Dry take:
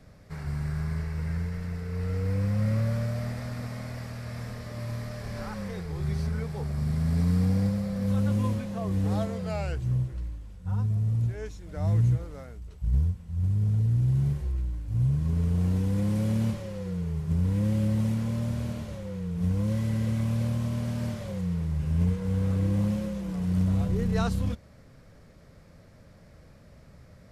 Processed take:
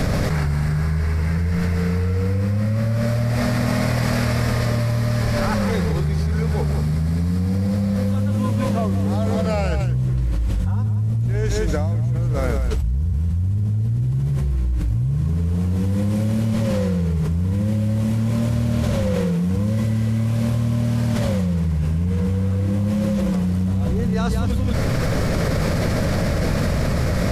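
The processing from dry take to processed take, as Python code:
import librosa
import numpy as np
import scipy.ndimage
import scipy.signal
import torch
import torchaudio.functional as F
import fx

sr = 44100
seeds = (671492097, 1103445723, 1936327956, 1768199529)

y = fx.highpass(x, sr, hz=fx.line((19.14, 260.0), (19.55, 96.0)), slope=24, at=(19.14, 19.55), fade=0.02)
y = y + 10.0 ** (-7.5 / 20.0) * np.pad(y, (int(180 * sr / 1000.0), 0))[:len(y)]
y = fx.env_flatten(y, sr, amount_pct=100)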